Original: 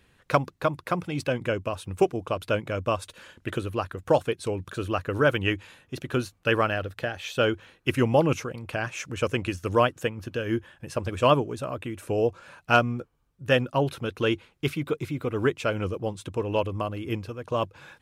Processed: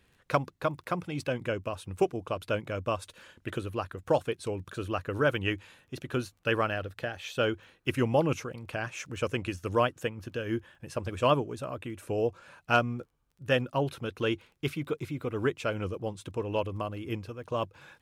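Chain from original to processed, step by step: crackle 15/s -47 dBFS; gain -4.5 dB

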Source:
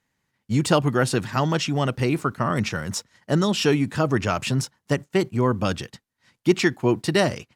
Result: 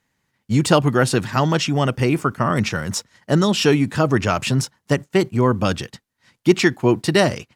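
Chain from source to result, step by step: 1.67–2.57 notch 4000 Hz, Q 8.2; gain +4 dB

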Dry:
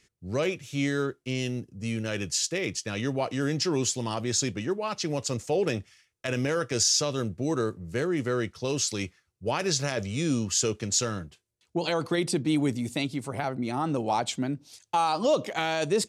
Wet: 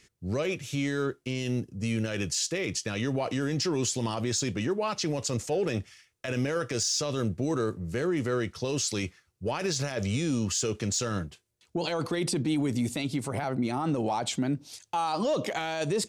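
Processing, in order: soft clip -13.5 dBFS, distortion -27 dB; limiter -25 dBFS, peak gain reduction 10 dB; gain +4.5 dB

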